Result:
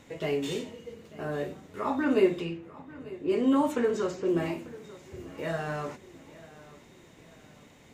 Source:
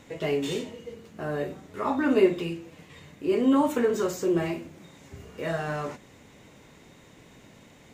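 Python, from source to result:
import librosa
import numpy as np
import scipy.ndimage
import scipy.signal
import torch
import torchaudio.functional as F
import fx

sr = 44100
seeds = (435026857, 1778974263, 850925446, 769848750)

y = fx.env_lowpass(x, sr, base_hz=1000.0, full_db=-18.5, at=(2.04, 4.27), fade=0.02)
y = fx.echo_feedback(y, sr, ms=893, feedback_pct=41, wet_db=-19)
y = F.gain(torch.from_numpy(y), -2.5).numpy()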